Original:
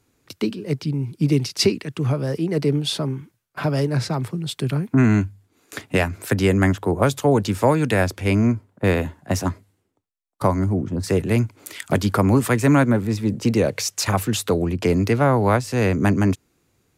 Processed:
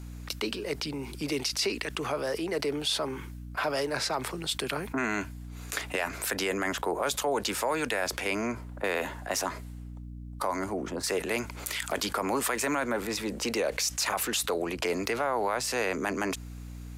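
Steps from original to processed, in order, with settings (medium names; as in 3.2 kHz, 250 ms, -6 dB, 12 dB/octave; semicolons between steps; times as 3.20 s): high-pass 590 Hz 12 dB/octave; peak limiter -17 dBFS, peak gain reduction 10.5 dB; hum 60 Hz, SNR 22 dB; level flattener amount 50%; trim -3 dB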